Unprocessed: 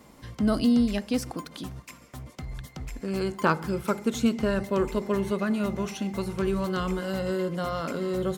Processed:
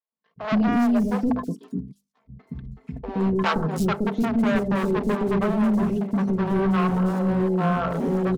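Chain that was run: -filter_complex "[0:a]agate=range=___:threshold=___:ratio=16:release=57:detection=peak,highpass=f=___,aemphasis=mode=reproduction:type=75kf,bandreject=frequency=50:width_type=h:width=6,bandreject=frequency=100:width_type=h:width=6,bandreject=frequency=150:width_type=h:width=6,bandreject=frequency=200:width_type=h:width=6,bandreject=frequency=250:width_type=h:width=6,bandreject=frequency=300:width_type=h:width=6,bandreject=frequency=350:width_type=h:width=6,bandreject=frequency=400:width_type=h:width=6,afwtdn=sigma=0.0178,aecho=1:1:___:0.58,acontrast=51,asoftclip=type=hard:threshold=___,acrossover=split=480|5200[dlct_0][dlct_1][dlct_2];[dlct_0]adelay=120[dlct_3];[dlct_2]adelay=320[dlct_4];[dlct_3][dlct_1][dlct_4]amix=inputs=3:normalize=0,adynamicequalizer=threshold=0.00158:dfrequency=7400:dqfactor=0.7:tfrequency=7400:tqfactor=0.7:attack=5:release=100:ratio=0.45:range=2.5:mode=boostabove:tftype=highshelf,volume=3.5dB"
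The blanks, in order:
-37dB, -40dB, 100, 4.5, -21dB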